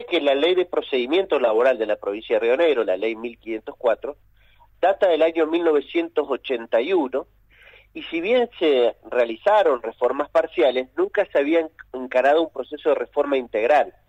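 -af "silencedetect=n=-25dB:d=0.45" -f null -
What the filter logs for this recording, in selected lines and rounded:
silence_start: 4.11
silence_end: 4.83 | silence_duration: 0.72
silence_start: 7.21
silence_end: 7.97 | silence_duration: 0.75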